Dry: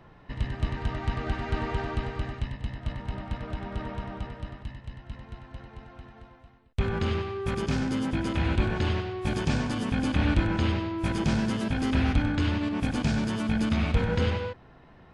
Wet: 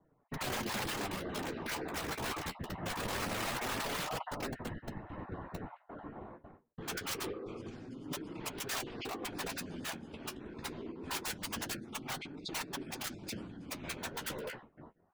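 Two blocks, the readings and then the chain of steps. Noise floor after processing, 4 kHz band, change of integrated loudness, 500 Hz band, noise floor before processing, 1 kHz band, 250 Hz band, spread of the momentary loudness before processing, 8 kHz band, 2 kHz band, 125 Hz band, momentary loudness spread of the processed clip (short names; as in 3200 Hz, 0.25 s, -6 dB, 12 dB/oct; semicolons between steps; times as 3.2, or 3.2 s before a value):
-70 dBFS, -3.0 dB, -11.0 dB, -9.0 dB, -53 dBFS, -5.5 dB, -14.5 dB, 17 LU, +5.0 dB, -6.0 dB, -18.5 dB, 11 LU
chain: random spectral dropouts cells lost 22%; gate with hold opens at -42 dBFS; HPF 150 Hz 12 dB/oct; low-pass opened by the level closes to 960 Hz, open at -25.5 dBFS; dynamic EQ 310 Hz, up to +6 dB, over -42 dBFS, Q 0.74; negative-ratio compressor -38 dBFS, ratio -1; wrapped overs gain 28.5 dB; whisperiser; flange 0.24 Hz, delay 6.2 ms, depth 7.9 ms, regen -31%; gain +1 dB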